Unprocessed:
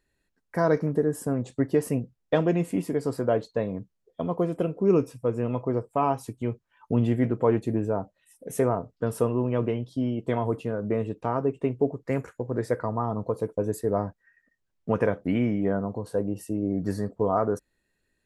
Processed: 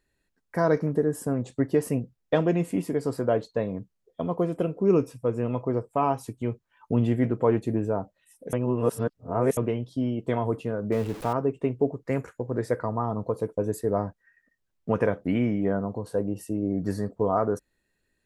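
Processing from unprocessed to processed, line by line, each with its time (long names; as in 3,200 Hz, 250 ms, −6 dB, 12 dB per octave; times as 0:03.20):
0:08.53–0:09.57: reverse
0:10.92–0:11.33: converter with a step at zero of −35.5 dBFS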